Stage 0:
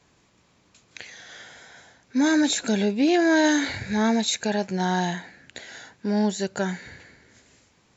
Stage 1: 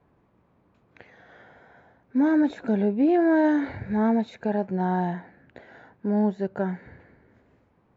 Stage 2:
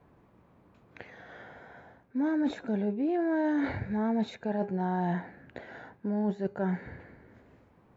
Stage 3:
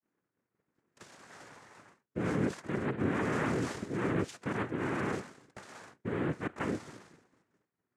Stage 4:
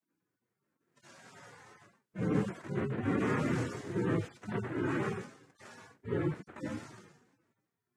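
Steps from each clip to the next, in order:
LPF 1100 Hz 12 dB/oct
de-hum 407.9 Hz, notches 30; reverse; compressor 6:1, threshold -30 dBFS, peak gain reduction 12.5 dB; reverse; gain +3 dB
noise vocoder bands 3; expander -49 dBFS; gain -3.5 dB
median-filter separation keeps harmonic; gain +3.5 dB

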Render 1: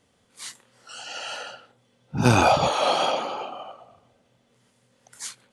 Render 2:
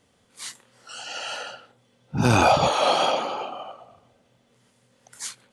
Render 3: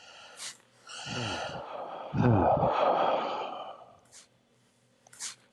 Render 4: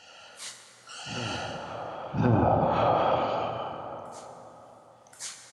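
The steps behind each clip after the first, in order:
maximiser +8 dB; gain -6.5 dB
treble ducked by the level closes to 730 Hz, closed at -14.5 dBFS; reverse echo 1.077 s -14 dB; gain -4 dB
doubler 36 ms -13 dB; plate-style reverb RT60 3.8 s, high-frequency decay 0.45×, DRR 4 dB

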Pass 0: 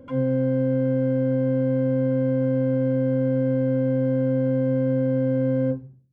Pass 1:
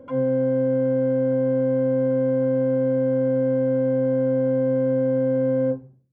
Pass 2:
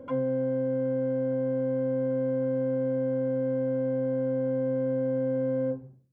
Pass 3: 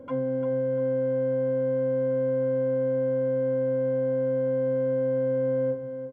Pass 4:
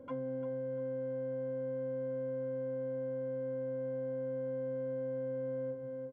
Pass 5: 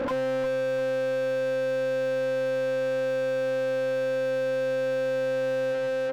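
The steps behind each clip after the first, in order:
bell 700 Hz +11 dB 2.9 oct; gain -6.5 dB
compressor, threshold -25 dBFS, peak gain reduction 7 dB
feedback echo 0.346 s, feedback 31%, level -9 dB
compressor, threshold -28 dBFS, peak gain reduction 5.5 dB; gain -7 dB
overdrive pedal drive 42 dB, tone 1200 Hz, clips at -29 dBFS; gain +8 dB

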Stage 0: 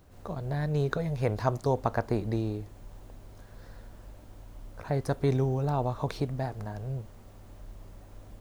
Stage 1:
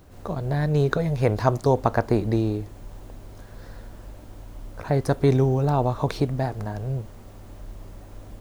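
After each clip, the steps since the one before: bell 320 Hz +2 dB; gain +6.5 dB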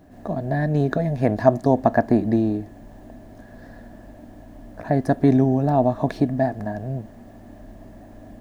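small resonant body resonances 250/650/1700 Hz, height 16 dB, ringing for 25 ms; gain -7 dB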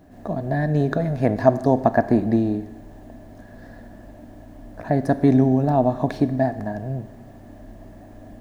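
Schroeder reverb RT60 1.2 s, combs from 31 ms, DRR 13.5 dB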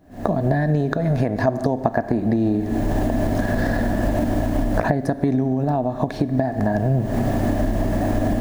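recorder AGC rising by 79 dB/s; gain -5 dB

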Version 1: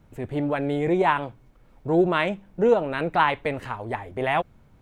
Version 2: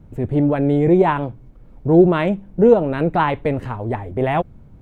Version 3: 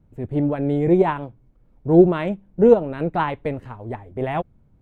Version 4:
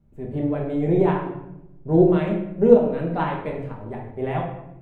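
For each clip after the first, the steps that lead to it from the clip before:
tilt shelf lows +7.5 dB, about 650 Hz; gain +4.5 dB
upward expander 1.5:1, over -32 dBFS
shoebox room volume 270 m³, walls mixed, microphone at 1.2 m; gain -6 dB

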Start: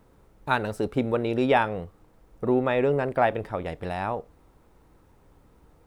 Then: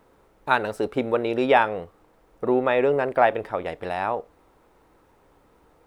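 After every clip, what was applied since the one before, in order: tone controls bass -11 dB, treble -4 dB; gain +4 dB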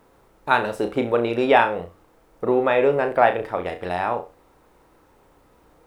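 requantised 12-bit, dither none; flutter echo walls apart 5.8 m, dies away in 0.27 s; gain +1.5 dB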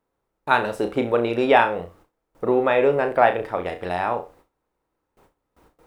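gate with hold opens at -45 dBFS

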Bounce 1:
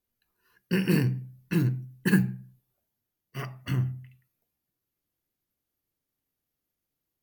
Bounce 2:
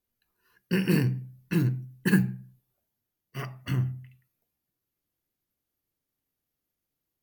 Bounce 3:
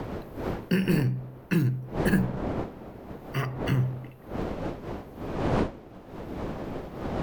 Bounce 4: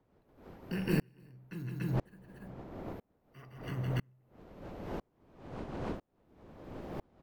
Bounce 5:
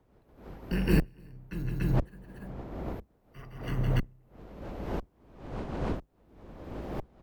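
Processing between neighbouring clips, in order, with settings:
nothing audible
wind noise 460 Hz -37 dBFS; in parallel at -11 dB: crossover distortion -35 dBFS; on the sum: three-band squash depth 70%; gain +1 dB
loudspeakers at several distances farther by 56 m -8 dB, 99 m -5 dB; dB-ramp tremolo swelling 1 Hz, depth 36 dB; gain -3.5 dB
octaver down 2 oct, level 0 dB; gain +4.5 dB

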